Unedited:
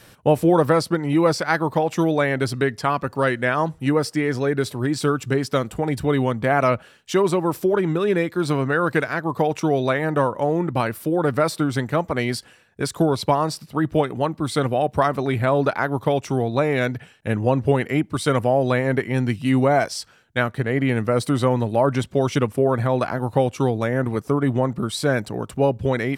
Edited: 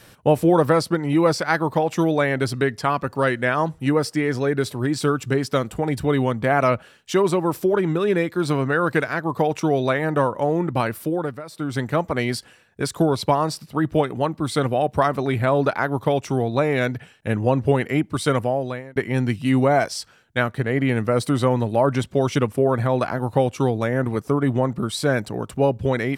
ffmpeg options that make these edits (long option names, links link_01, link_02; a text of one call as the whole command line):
ffmpeg -i in.wav -filter_complex "[0:a]asplit=4[link_01][link_02][link_03][link_04];[link_01]atrim=end=11.42,asetpts=PTS-STARTPTS,afade=type=out:start_time=11.03:duration=0.39:silence=0.133352[link_05];[link_02]atrim=start=11.42:end=11.46,asetpts=PTS-STARTPTS,volume=-17.5dB[link_06];[link_03]atrim=start=11.46:end=18.96,asetpts=PTS-STARTPTS,afade=type=in:duration=0.39:silence=0.133352,afade=type=out:start_time=6.83:duration=0.67[link_07];[link_04]atrim=start=18.96,asetpts=PTS-STARTPTS,afade=type=in:duration=0.004:curve=hsin[link_08];[link_05][link_06][link_07][link_08]concat=n=4:v=0:a=1" out.wav